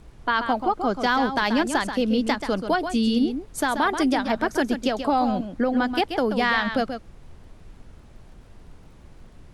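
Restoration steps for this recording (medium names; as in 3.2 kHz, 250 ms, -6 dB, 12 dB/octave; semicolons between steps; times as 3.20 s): de-click; noise print and reduce 23 dB; inverse comb 133 ms -8.5 dB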